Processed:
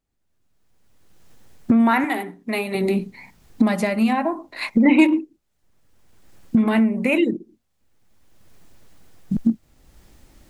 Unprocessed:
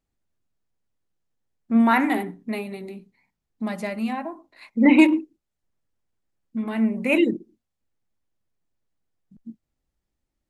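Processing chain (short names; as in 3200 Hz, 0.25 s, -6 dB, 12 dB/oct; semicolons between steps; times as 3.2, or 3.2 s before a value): recorder AGC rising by 23 dB/s; 2.04–2.75 low shelf 300 Hz -12 dB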